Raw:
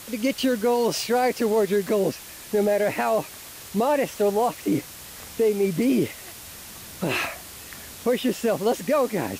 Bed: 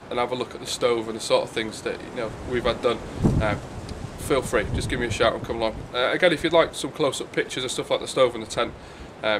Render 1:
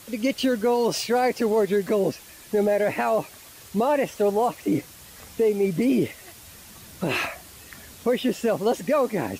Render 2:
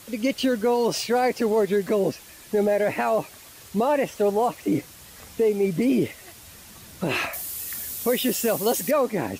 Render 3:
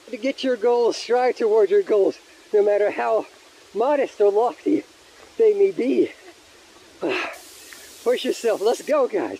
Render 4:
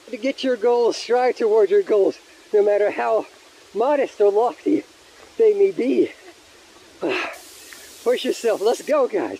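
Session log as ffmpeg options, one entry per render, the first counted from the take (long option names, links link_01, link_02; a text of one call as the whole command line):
ffmpeg -i in.wav -af "afftdn=noise_reduction=6:noise_floor=-41" out.wav
ffmpeg -i in.wav -filter_complex "[0:a]asettb=1/sr,asplit=3[link_01][link_02][link_03];[link_01]atrim=end=7.334[link_04];[link_02]atrim=start=7.33:end=8.91,asetpts=PTS-STARTPTS,afade=type=in:duration=0.004:curve=qsin,afade=type=out:start_time=1.576:duration=0.004:curve=qsin,aemphasis=mode=production:type=75fm[link_05];[link_03]atrim=start=8.906[link_06];[link_04][link_05]acrossfade=duration=0.004:curve1=hsin:curve2=qsin[link_07];[link_07][link_06]acrossfade=duration=0.004:curve1=qsin:curve2=hsin" out.wav
ffmpeg -i in.wav -af "lowpass=5600,lowshelf=frequency=250:width_type=q:width=3:gain=-10.5" out.wav
ffmpeg -i in.wav -af "volume=1dB" out.wav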